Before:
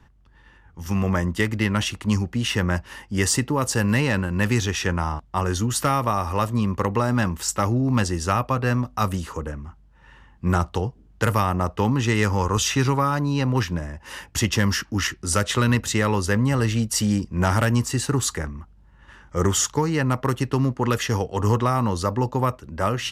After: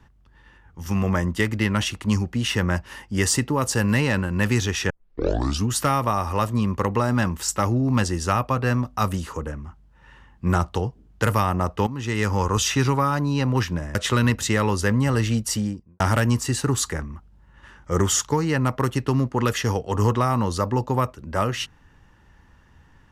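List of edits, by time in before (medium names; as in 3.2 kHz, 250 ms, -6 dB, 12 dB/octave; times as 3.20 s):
4.90 s: tape start 0.78 s
11.87–12.37 s: fade in, from -14 dB
13.95–15.40 s: delete
16.84–17.45 s: studio fade out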